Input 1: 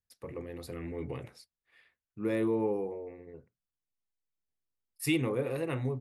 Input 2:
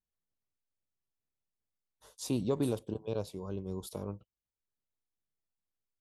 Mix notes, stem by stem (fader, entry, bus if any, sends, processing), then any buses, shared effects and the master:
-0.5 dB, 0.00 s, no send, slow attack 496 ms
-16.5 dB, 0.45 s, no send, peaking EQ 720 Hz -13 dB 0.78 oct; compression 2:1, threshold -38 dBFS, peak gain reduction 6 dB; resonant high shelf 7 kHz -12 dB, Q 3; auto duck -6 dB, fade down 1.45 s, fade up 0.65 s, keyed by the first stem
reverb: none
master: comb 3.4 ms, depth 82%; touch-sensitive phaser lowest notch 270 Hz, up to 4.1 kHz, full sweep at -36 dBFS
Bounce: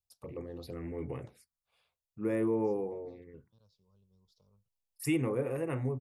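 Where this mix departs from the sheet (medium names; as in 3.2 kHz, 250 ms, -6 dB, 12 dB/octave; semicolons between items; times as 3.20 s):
stem 1: missing slow attack 496 ms; master: missing comb 3.4 ms, depth 82%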